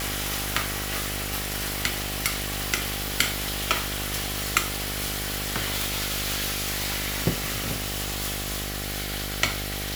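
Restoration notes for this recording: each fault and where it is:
buzz 50 Hz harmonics 16 -34 dBFS

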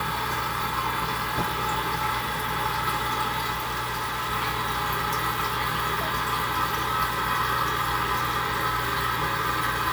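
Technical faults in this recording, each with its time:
3.51–4.32 s: clipped -25.5 dBFS

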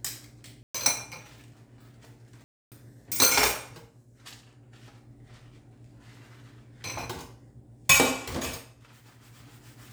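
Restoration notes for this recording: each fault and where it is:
0.63–0.74 s: dropout 115 ms
2.44–2.72 s: dropout 278 ms

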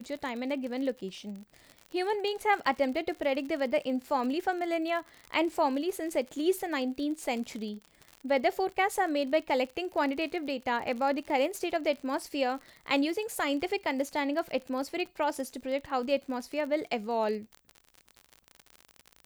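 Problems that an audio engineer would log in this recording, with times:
crackle 50 per s -36 dBFS

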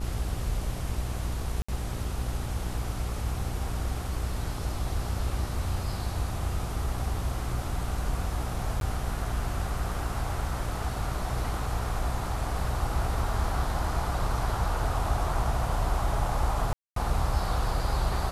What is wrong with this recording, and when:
buzz 60 Hz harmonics 20 -34 dBFS
1.62–1.69 s: dropout 65 ms
8.80–8.81 s: dropout 12 ms
16.73–16.96 s: dropout 233 ms

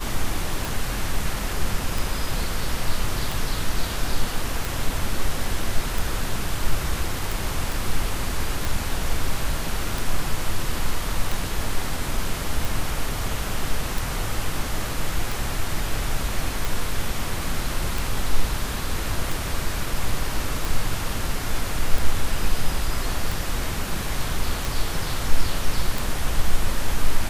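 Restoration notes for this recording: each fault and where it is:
tick 45 rpm
7.72 s: pop

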